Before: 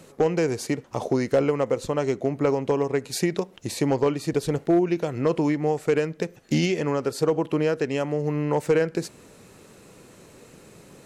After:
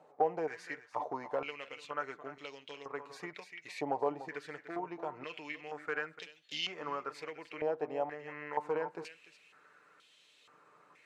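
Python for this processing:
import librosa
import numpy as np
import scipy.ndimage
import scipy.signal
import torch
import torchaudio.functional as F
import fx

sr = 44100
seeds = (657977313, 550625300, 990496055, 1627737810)

y = x + 0.43 * np.pad(x, (int(6.7 * sr / 1000.0), 0))[:len(x)]
y = y + 10.0 ** (-13.0 / 20.0) * np.pad(y, (int(294 * sr / 1000.0), 0))[:len(y)]
y = fx.filter_held_bandpass(y, sr, hz=2.1, low_hz=780.0, high_hz=3300.0)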